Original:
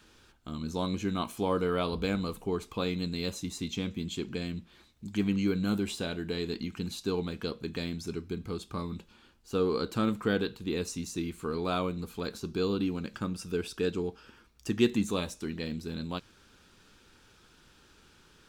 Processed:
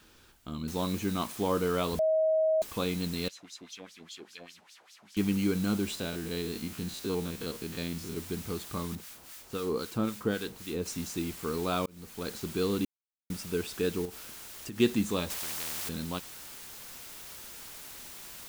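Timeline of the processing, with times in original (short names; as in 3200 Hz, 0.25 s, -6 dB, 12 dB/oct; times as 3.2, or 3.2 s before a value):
0.68 noise floor step -67 dB -46 dB
1.99–2.62 bleep 634 Hz -22.5 dBFS
3.28–5.17 LFO band-pass sine 5 Hz 630–5600 Hz
5.95–8.17 stepped spectrum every 50 ms
8.95–10.86 harmonic tremolo 3.8 Hz, crossover 1100 Hz
11.86–12.33 fade in
12.85–13.3 mute
14.05–14.8 compressor 5:1, threshold -37 dBFS
15.3–15.89 spectral compressor 10:1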